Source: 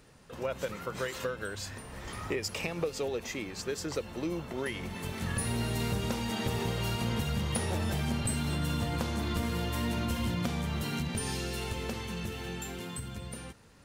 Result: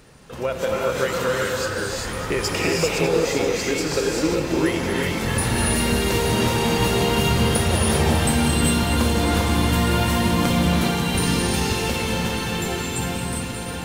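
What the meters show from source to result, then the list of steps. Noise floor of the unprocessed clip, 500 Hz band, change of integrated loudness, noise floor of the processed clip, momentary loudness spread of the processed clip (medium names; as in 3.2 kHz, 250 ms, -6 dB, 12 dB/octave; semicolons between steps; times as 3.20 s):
-46 dBFS, +14.0 dB, +13.0 dB, -29 dBFS, 6 LU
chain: on a send: echo whose repeats swap between lows and highs 299 ms, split 1.4 kHz, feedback 89%, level -11.5 dB; on the sum: gated-style reverb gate 420 ms rising, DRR -3 dB; trim +8.5 dB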